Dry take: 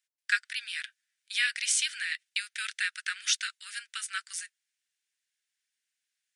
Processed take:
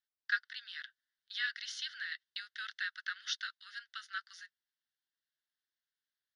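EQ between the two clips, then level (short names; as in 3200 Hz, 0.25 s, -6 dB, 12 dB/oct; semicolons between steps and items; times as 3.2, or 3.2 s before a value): air absorption 130 m; fixed phaser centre 2400 Hz, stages 6; -3.0 dB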